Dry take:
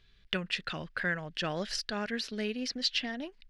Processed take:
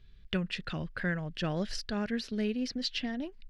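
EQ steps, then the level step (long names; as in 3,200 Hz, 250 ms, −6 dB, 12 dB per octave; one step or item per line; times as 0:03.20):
low-shelf EQ 170 Hz +5.5 dB
low-shelf EQ 470 Hz +8.5 dB
−4.5 dB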